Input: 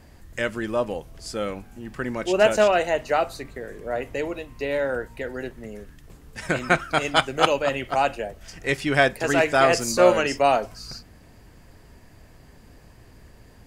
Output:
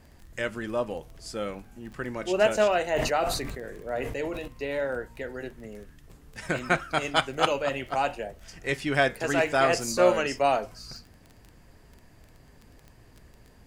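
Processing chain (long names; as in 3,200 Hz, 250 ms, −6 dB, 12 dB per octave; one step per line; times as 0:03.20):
flanger 0.59 Hz, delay 4.5 ms, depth 3.8 ms, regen −86%
surface crackle 11 per second −37 dBFS
0:02.85–0:04.48: level that may fall only so fast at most 35 dB per second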